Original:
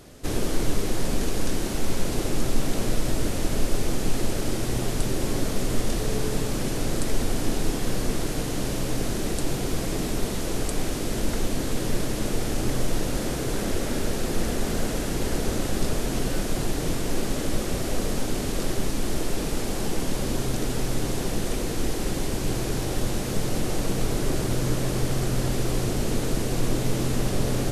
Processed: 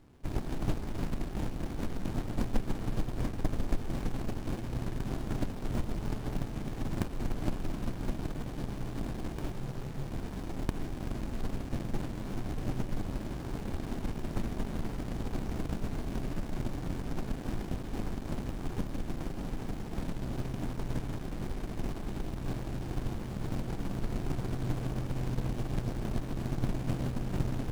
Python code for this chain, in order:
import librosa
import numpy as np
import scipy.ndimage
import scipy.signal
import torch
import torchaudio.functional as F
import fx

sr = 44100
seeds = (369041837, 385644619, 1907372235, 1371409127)

y = fx.cheby_harmonics(x, sr, harmonics=(2, 3), levels_db=(-17, -17), full_scale_db=-8.5)
y = fx.spec_freeze(y, sr, seeds[0], at_s=9.54, hold_s=0.57)
y = fx.running_max(y, sr, window=65)
y = y * 10.0 ** (-4.0 / 20.0)